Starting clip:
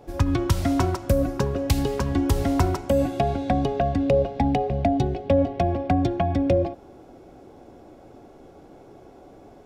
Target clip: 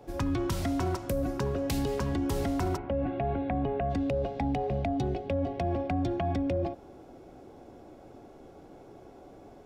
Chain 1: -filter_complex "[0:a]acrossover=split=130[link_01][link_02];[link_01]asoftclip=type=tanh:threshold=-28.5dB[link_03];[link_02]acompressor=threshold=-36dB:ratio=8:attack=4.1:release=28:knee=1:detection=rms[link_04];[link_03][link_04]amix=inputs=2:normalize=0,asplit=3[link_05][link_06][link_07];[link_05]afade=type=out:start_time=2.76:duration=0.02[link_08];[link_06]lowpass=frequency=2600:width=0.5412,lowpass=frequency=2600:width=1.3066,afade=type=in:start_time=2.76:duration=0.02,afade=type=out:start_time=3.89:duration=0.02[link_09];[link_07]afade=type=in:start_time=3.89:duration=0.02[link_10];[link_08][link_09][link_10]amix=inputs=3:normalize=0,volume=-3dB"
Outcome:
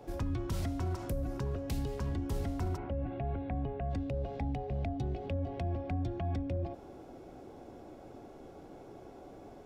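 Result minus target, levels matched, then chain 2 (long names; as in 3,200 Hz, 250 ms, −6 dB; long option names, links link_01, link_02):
downward compressor: peak gain reduction +9.5 dB
-filter_complex "[0:a]acrossover=split=130[link_01][link_02];[link_01]asoftclip=type=tanh:threshold=-28.5dB[link_03];[link_02]acompressor=threshold=-25dB:ratio=8:attack=4.1:release=28:knee=1:detection=rms[link_04];[link_03][link_04]amix=inputs=2:normalize=0,asplit=3[link_05][link_06][link_07];[link_05]afade=type=out:start_time=2.76:duration=0.02[link_08];[link_06]lowpass=frequency=2600:width=0.5412,lowpass=frequency=2600:width=1.3066,afade=type=in:start_time=2.76:duration=0.02,afade=type=out:start_time=3.89:duration=0.02[link_09];[link_07]afade=type=in:start_time=3.89:duration=0.02[link_10];[link_08][link_09][link_10]amix=inputs=3:normalize=0,volume=-3dB"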